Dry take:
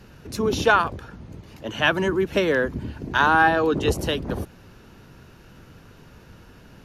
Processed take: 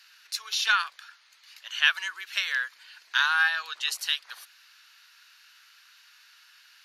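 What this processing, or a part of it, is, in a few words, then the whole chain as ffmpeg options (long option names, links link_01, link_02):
headphones lying on a table: -af "highpass=frequency=1500:width=0.5412,highpass=frequency=1500:width=1.3066,equalizer=frequency=4300:width_type=o:width=0.6:gain=7.5"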